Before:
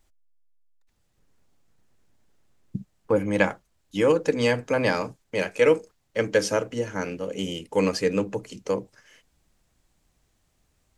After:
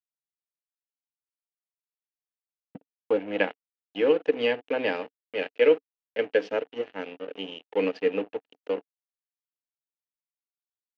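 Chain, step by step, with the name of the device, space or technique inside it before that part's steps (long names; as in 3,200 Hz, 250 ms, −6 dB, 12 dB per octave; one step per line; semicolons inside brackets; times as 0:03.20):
blown loudspeaker (dead-zone distortion −33.5 dBFS; loudspeaker in its box 250–3,800 Hz, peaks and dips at 280 Hz +8 dB, 450 Hz +8 dB, 730 Hz +7 dB, 1,100 Hz −4 dB, 1,800 Hz +4 dB, 2,800 Hz +10 dB)
level −6.5 dB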